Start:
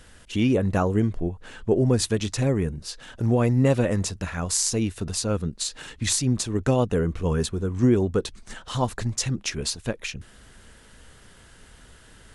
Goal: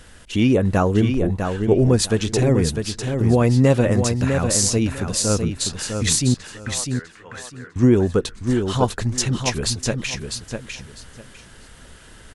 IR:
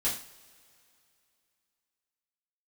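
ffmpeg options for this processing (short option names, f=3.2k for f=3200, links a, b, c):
-filter_complex "[0:a]asettb=1/sr,asplit=3[a][b][c];[a]atrim=end=6.344[d];[b]atrim=start=6.34:end=7.76,asetpts=PTS-STARTPTS,afade=t=in:d=0.004:c=qsin,afade=t=out:st=1.416:d=0.004:c=qsin,bandpass=f=1.8k:t=q:w=3.6:csg=0[e];[c]atrim=start=7.756[f];[d][e]acrossfade=d=0.004:c1=hsin:c2=qsin[g];[g][f]acrossfade=d=0.004:c1=qsin:c2=hsin,aecho=1:1:651|1302|1953:0.501|0.105|0.0221,volume=4.5dB"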